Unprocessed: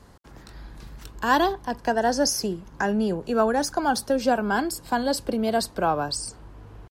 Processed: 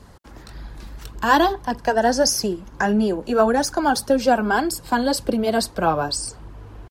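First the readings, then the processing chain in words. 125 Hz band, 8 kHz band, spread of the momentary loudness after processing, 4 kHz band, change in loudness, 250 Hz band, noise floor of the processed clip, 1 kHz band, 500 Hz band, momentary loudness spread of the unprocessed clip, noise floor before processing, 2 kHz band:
+4.0 dB, +4.0 dB, 15 LU, +4.0 dB, +4.0 dB, +4.0 dB, -44 dBFS, +4.0 dB, +4.0 dB, 9 LU, -49 dBFS, +4.5 dB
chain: flange 1.7 Hz, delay 0.2 ms, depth 3.8 ms, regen -40%; trim +8 dB

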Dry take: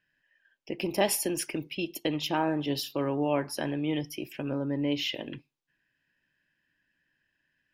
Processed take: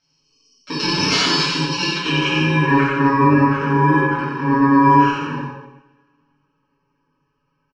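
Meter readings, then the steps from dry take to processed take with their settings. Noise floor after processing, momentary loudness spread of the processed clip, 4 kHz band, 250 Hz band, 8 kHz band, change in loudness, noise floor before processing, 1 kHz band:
-70 dBFS, 10 LU, +14.5 dB, +14.0 dB, no reading, +14.5 dB, -79 dBFS, +20.0 dB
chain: bit-reversed sample order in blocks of 64 samples; spectral gate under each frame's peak -25 dB strong; low-pass 6.9 kHz 24 dB/octave; peaking EQ 820 Hz +4 dB 2.2 oct; hum notches 60/120/180/240/300/360/420/480/540 Hz; comb 7.1 ms, depth 77%; in parallel at -6 dB: one-sided clip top -27.5 dBFS; on the sum: low-pass sweep 4.5 kHz -> 1.5 kHz, 1.66–2.95 s; on a send: delay 89 ms -4 dB; on the sum: two-slope reverb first 0.86 s, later 2.4 s, from -27 dB, DRR -8.5 dB; trim -1 dB

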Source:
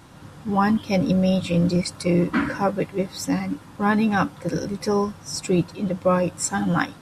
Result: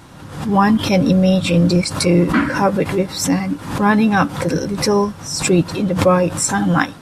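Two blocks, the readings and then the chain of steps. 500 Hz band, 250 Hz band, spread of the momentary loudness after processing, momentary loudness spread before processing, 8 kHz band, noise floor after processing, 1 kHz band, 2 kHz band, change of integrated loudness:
+6.5 dB, +6.5 dB, 6 LU, 7 LU, +8.5 dB, -36 dBFS, +6.5 dB, +7.0 dB, +6.5 dB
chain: swell ahead of each attack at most 85 dB/s; trim +6 dB

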